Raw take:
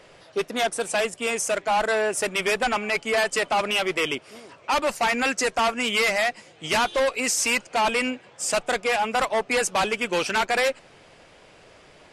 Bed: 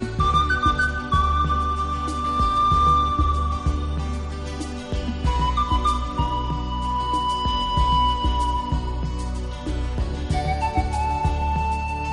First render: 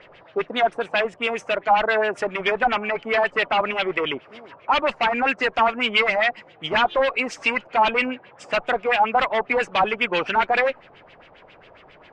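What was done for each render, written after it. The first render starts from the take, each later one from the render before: LFO low-pass sine 7.4 Hz 800–3300 Hz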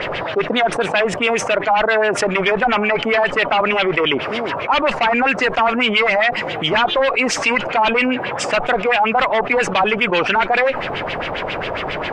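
fast leveller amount 70%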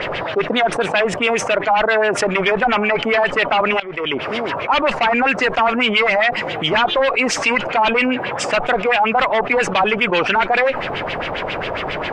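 3.8–4.31 fade in, from -19 dB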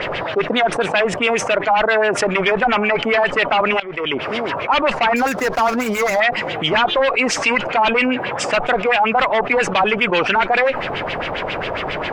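5.16–6.2 median filter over 15 samples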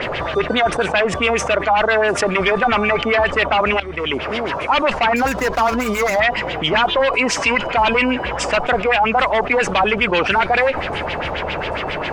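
add bed -11 dB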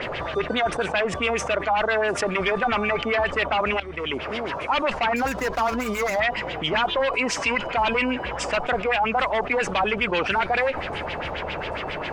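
gain -6.5 dB

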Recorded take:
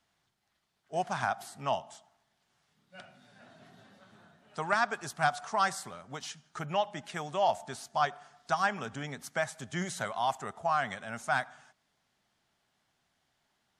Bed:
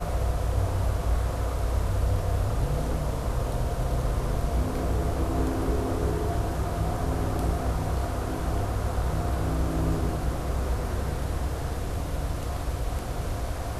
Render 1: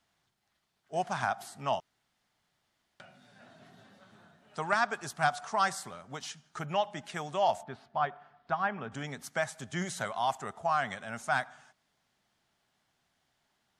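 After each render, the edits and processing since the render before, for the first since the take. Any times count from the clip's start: 1.8–3 room tone; 7.63–8.92 air absorption 400 m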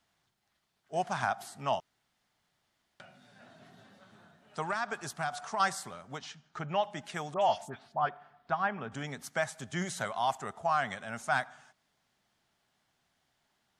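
4.7–5.6 compressor 4:1, threshold -29 dBFS; 6.18–6.83 air absorption 110 m; 7.34–8.09 dispersion highs, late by 76 ms, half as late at 2300 Hz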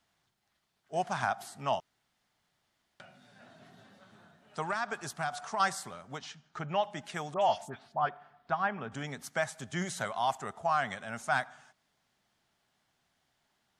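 nothing audible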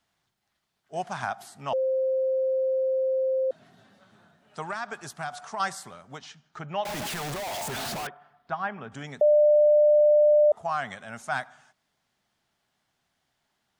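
1.73–3.51 bleep 525 Hz -22 dBFS; 6.85–8.07 infinite clipping; 9.21–10.52 bleep 597 Hz -15 dBFS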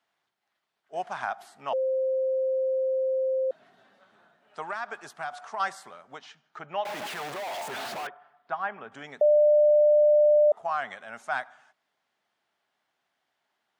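HPF 150 Hz 6 dB/oct; tone controls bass -12 dB, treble -9 dB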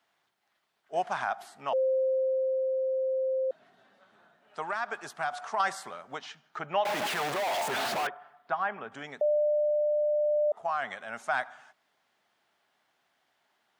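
limiter -21.5 dBFS, peak gain reduction 6 dB; vocal rider within 5 dB 2 s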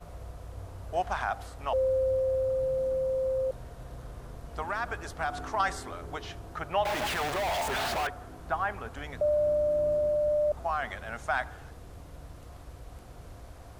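add bed -16.5 dB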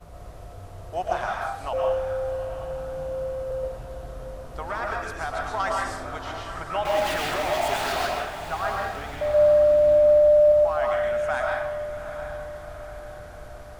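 diffused feedback echo 0.765 s, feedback 53%, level -11 dB; digital reverb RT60 0.69 s, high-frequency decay 0.85×, pre-delay 85 ms, DRR -1.5 dB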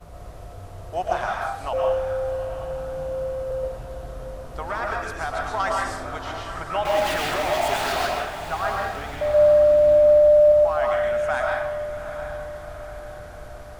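gain +2 dB

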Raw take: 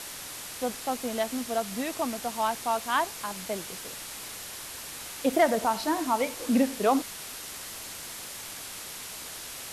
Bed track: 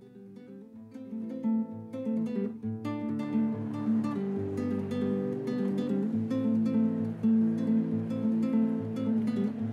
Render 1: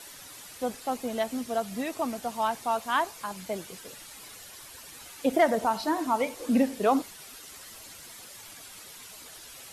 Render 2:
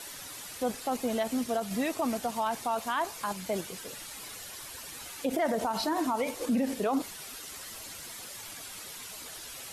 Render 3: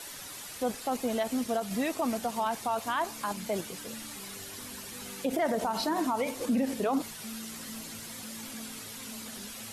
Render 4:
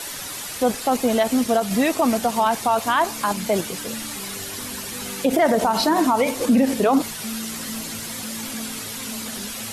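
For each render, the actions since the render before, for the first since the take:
denoiser 10 dB, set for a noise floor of -41 dBFS
in parallel at -2 dB: level quantiser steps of 13 dB; on the sum: limiter -21 dBFS, peak gain reduction 11 dB
add bed track -18.5 dB
gain +11 dB

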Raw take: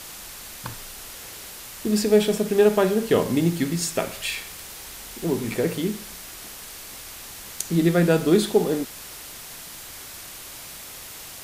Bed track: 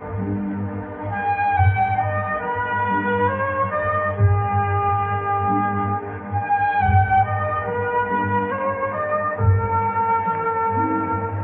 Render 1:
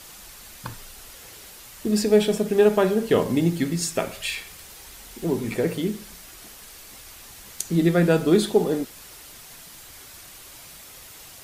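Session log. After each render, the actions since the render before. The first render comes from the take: denoiser 6 dB, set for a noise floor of -40 dBFS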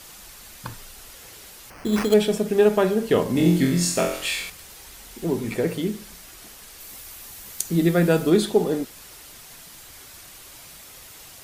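1.7–2.14 sample-rate reducer 3700 Hz; 3.33–4.5 flutter echo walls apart 3.9 m, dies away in 0.58 s; 6.8–8.3 high shelf 12000 Hz +10.5 dB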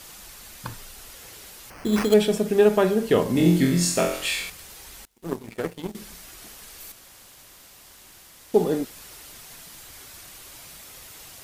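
5.05–5.95 power-law curve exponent 2; 6.92–8.54 room tone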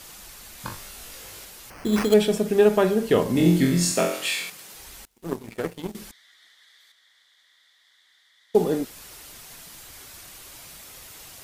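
0.56–1.45 flutter echo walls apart 3.5 m, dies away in 0.3 s; 3.91–4.75 HPF 140 Hz 24 dB/oct; 6.11–8.55 double band-pass 2600 Hz, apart 0.84 oct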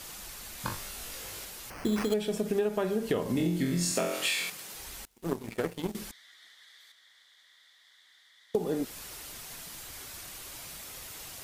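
compressor 12:1, threshold -25 dBFS, peak gain reduction 14.5 dB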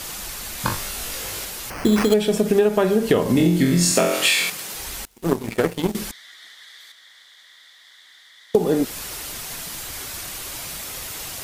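gain +11.5 dB

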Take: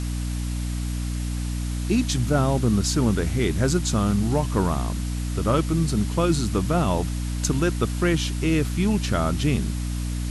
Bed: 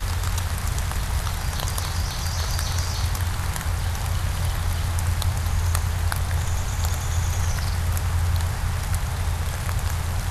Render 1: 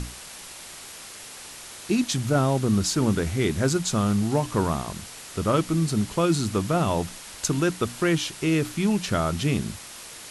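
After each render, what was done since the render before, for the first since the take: notches 60/120/180/240/300 Hz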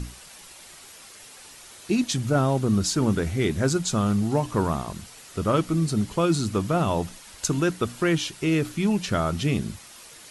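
denoiser 7 dB, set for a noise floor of -42 dBFS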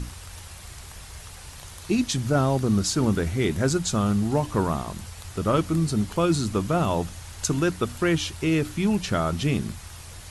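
add bed -18 dB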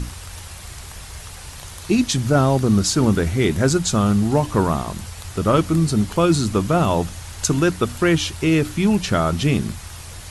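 gain +5.5 dB

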